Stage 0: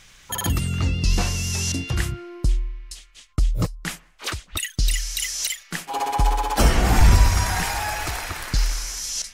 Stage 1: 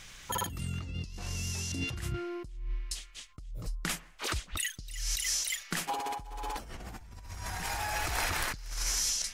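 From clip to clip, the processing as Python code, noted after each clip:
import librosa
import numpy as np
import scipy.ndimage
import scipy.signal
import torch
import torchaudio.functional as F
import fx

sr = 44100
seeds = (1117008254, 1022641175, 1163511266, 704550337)

y = fx.over_compress(x, sr, threshold_db=-30.0, ratio=-1.0)
y = F.gain(torch.from_numpy(y), -7.0).numpy()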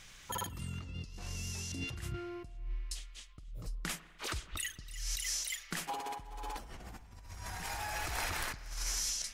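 y = fx.rev_spring(x, sr, rt60_s=2.0, pass_ms=(50,), chirp_ms=50, drr_db=16.0)
y = F.gain(torch.from_numpy(y), -5.0).numpy()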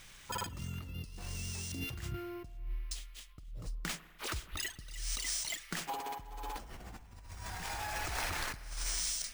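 y = np.repeat(x[::3], 3)[:len(x)]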